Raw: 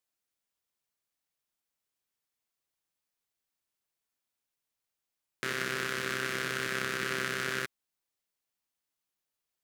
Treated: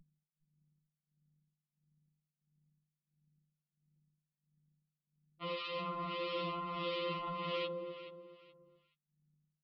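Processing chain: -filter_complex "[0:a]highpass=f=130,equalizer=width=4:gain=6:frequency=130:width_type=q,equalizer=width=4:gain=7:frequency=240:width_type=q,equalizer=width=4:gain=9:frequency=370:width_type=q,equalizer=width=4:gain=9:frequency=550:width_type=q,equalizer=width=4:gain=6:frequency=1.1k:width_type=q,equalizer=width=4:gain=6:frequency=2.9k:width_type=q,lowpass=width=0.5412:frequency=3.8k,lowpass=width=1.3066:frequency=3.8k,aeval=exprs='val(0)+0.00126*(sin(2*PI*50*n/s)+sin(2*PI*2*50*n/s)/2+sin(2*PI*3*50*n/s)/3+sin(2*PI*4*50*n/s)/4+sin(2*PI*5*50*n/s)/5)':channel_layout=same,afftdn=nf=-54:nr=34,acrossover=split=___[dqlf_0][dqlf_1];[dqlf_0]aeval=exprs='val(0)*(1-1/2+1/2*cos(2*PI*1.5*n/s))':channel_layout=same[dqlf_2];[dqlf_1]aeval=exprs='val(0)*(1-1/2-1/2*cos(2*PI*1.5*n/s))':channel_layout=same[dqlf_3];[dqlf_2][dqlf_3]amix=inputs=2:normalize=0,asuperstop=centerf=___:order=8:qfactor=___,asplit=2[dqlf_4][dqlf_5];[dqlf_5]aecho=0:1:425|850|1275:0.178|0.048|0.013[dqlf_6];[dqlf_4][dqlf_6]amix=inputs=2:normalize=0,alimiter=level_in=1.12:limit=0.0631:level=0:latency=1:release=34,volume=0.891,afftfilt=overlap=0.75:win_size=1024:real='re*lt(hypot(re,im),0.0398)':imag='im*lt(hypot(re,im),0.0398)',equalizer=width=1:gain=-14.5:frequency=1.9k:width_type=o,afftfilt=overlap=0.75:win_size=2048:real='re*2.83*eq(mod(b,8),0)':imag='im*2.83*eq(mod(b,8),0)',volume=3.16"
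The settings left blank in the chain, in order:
1400, 1600, 4.6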